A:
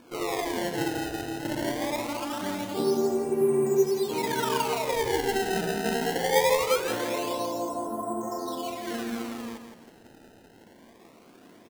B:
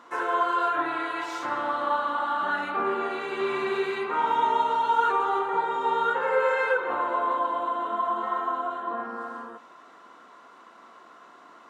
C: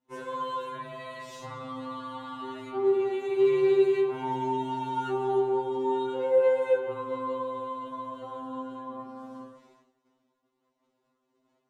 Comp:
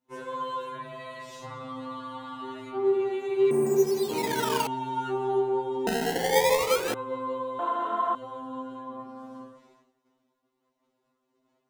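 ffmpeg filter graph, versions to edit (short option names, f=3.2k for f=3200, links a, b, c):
-filter_complex "[0:a]asplit=2[a][b];[2:a]asplit=4[c][d][e][f];[c]atrim=end=3.512[g];[a]atrim=start=3.508:end=4.672[h];[d]atrim=start=4.668:end=5.872[i];[b]atrim=start=5.868:end=6.942[j];[e]atrim=start=6.938:end=7.592[k];[1:a]atrim=start=7.588:end=8.152[l];[f]atrim=start=8.148[m];[g][h]acrossfade=d=0.004:c1=hsin:c2=hsin[n];[n][i]acrossfade=d=0.004:c1=hsin:c2=hsin[o];[o][j]acrossfade=d=0.004:c1=hsin:c2=hsin[p];[p][k]acrossfade=d=0.004:c1=hsin:c2=hsin[q];[q][l]acrossfade=d=0.004:c1=hsin:c2=hsin[r];[r][m]acrossfade=d=0.004:c1=hsin:c2=hsin"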